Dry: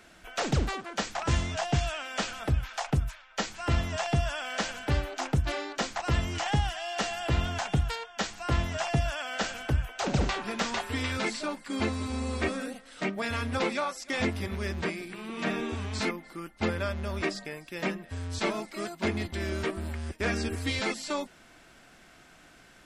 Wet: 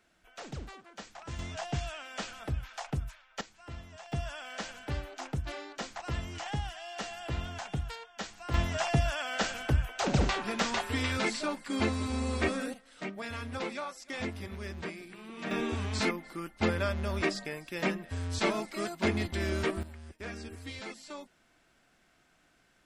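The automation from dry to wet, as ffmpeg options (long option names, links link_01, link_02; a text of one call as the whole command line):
ffmpeg -i in.wav -af "asetnsamples=nb_out_samples=441:pad=0,asendcmd='1.39 volume volume -7dB;3.41 volume volume -17.5dB;4.12 volume volume -8dB;8.54 volume volume 0dB;12.74 volume volume -7.5dB;15.51 volume volume 0.5dB;19.83 volume volume -12dB',volume=-14.5dB" out.wav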